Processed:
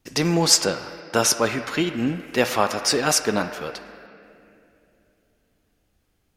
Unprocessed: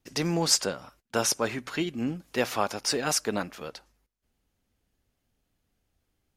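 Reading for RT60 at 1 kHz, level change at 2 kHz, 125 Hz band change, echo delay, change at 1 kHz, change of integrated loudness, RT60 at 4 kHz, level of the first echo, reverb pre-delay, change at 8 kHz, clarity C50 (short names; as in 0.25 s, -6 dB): 2.3 s, +7.5 dB, +6.5 dB, none, +7.0 dB, +6.5 dB, 2.0 s, none, 7 ms, +6.5 dB, 8.0 dB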